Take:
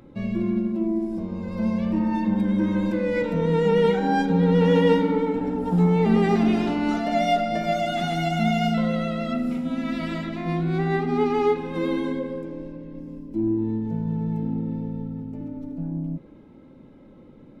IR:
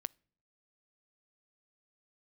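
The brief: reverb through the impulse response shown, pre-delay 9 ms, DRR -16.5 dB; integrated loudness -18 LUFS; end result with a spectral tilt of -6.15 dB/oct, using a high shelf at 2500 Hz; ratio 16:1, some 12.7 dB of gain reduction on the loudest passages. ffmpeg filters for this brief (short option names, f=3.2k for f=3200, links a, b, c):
-filter_complex "[0:a]highshelf=f=2.5k:g=-5.5,acompressor=threshold=-27dB:ratio=16,asplit=2[a][b];[1:a]atrim=start_sample=2205,adelay=9[c];[b][c]afir=irnorm=-1:irlink=0,volume=18.5dB[d];[a][d]amix=inputs=2:normalize=0,volume=-3dB"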